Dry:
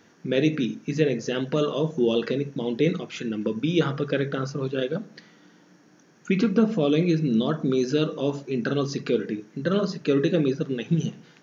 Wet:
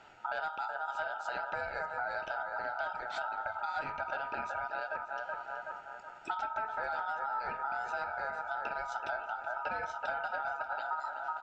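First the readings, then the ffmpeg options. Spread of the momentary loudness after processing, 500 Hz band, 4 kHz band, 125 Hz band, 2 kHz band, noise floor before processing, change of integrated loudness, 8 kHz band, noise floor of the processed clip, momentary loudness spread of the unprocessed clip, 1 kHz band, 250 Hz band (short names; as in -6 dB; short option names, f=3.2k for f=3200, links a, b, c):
3 LU, -17.0 dB, -17.5 dB, -33.0 dB, 0.0 dB, -56 dBFS, -11.5 dB, n/a, -50 dBFS, 7 LU, +5.5 dB, -35.5 dB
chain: -filter_complex "[0:a]asplit=2[a][b];[b]adelay=375,lowpass=f=810:p=1,volume=-7dB,asplit=2[c][d];[d]adelay=375,lowpass=f=810:p=1,volume=0.45,asplit=2[e][f];[f]adelay=375,lowpass=f=810:p=1,volume=0.45,asplit=2[g][h];[h]adelay=375,lowpass=f=810:p=1,volume=0.45,asplit=2[i][j];[j]adelay=375,lowpass=f=810:p=1,volume=0.45[k];[c][e][g][i][k]amix=inputs=5:normalize=0[l];[a][l]amix=inputs=2:normalize=0,aeval=exprs='0.501*(cos(1*acos(clip(val(0)/0.501,-1,1)))-cos(1*PI/2))+0.0501*(cos(5*acos(clip(val(0)/0.501,-1,1)))-cos(5*PI/2))':c=same,aemphasis=mode=reproduction:type=75kf,acompressor=threshold=-32dB:ratio=6,aeval=exprs='val(0)*sin(2*PI*1100*n/s)':c=same,asplit=2[m][n];[n]aecho=0:1:587:0.126[o];[m][o]amix=inputs=2:normalize=0"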